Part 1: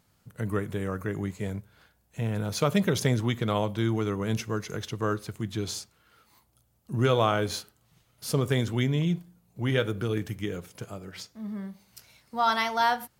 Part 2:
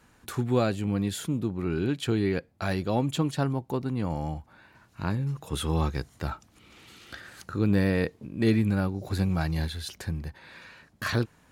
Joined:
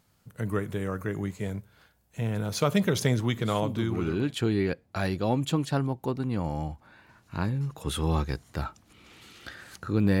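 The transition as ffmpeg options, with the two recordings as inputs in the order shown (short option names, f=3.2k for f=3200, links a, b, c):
-filter_complex "[0:a]apad=whole_dur=10.2,atrim=end=10.2,atrim=end=4.36,asetpts=PTS-STARTPTS[a];[1:a]atrim=start=0.98:end=7.86,asetpts=PTS-STARTPTS[b];[a][b]acrossfade=d=1.04:c1=qsin:c2=qsin"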